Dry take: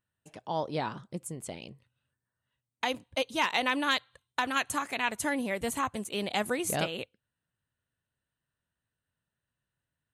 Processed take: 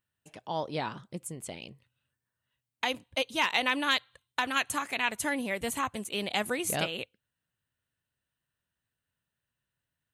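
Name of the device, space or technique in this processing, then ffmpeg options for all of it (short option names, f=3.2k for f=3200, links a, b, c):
presence and air boost: -af "equalizer=f=2.7k:t=o:w=1.4:g=4,highshelf=f=12k:g=6.5,volume=-1.5dB"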